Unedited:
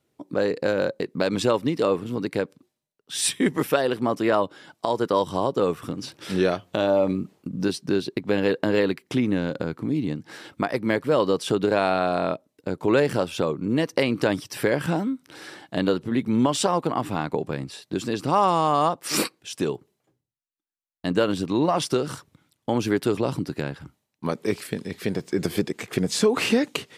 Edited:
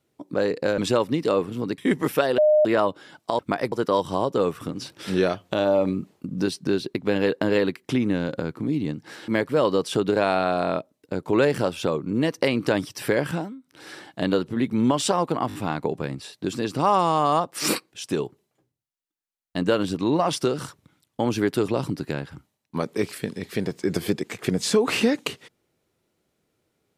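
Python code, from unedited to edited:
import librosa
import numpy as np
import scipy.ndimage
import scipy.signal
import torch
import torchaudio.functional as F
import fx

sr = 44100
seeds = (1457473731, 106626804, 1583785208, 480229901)

y = fx.edit(x, sr, fx.cut(start_s=0.78, length_s=0.54),
    fx.cut(start_s=2.32, length_s=1.01),
    fx.bleep(start_s=3.93, length_s=0.27, hz=609.0, db=-13.5),
    fx.move(start_s=10.5, length_s=0.33, to_s=4.94),
    fx.fade_down_up(start_s=14.8, length_s=0.65, db=-15.0, fade_s=0.3),
    fx.stutter(start_s=17.03, slice_s=0.02, count=4), tone=tone)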